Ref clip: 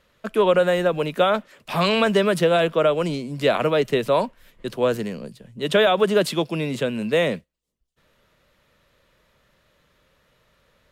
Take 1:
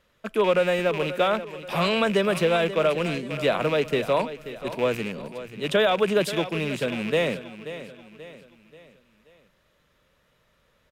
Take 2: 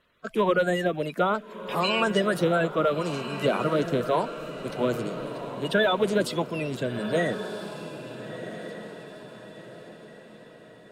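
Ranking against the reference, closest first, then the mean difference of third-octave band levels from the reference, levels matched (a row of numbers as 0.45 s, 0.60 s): 1, 2; 4.0 dB, 5.5 dB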